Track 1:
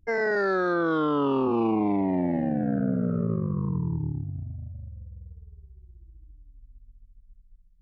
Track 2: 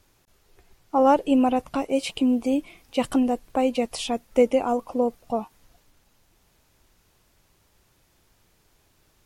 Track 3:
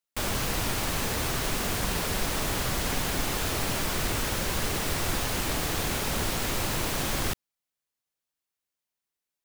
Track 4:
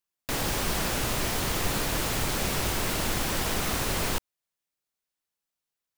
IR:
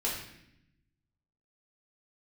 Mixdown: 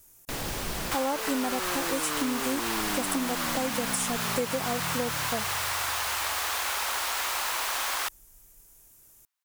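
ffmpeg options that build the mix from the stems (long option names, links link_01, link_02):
-filter_complex "[0:a]adelay=1050,volume=-8.5dB[link_01];[1:a]aexciter=amount=5.3:drive=7.4:freq=6100,volume=-4dB,asplit=2[link_02][link_03];[2:a]highpass=frequency=980:width_type=q:width=1.5,adelay=750,volume=2dB[link_04];[3:a]volume=-4.5dB[link_05];[link_03]apad=whole_len=263508[link_06];[link_05][link_06]sidechaincompress=threshold=-35dB:ratio=8:attack=16:release=489[link_07];[link_01][link_02][link_04][link_07]amix=inputs=4:normalize=0,acompressor=threshold=-25dB:ratio=6"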